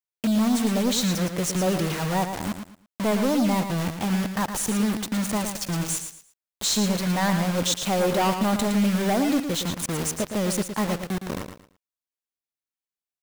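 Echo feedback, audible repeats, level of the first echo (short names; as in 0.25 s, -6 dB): 26%, 3, -8.0 dB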